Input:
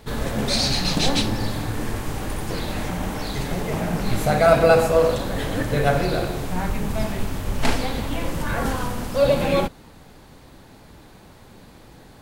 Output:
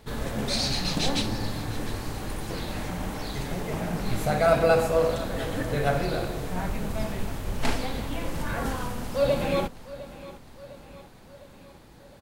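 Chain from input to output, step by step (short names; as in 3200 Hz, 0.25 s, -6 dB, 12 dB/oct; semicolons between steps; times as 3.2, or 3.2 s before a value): feedback echo 0.706 s, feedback 56%, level -17 dB; gain -5.5 dB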